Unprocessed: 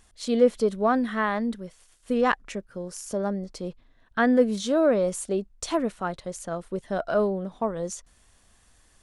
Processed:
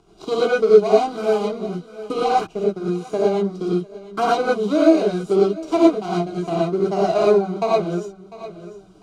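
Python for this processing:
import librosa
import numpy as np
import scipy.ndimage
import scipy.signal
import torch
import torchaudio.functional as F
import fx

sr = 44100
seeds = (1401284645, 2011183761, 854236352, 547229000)

y = scipy.signal.medfilt(x, 41)
y = scipy.signal.sosfilt(scipy.signal.butter(2, 6600.0, 'lowpass', fs=sr, output='sos'), y)
y = fx.low_shelf(y, sr, hz=340.0, db=-9.0)
y = fx.fixed_phaser(y, sr, hz=360.0, stages=8)
y = fx.transient(y, sr, attack_db=7, sustain_db=2)
y = fx.notch_comb(y, sr, f0_hz=880.0)
y = fx.echo_feedback(y, sr, ms=699, feedback_pct=21, wet_db=-21.5)
y = fx.rev_gated(y, sr, seeds[0], gate_ms=140, shape='rising', drr_db=-7.0)
y = fx.dynamic_eq(y, sr, hz=780.0, q=4.6, threshold_db=-47.0, ratio=4.0, max_db=7)
y = fx.band_squash(y, sr, depth_pct=40)
y = y * librosa.db_to_amplitude(6.5)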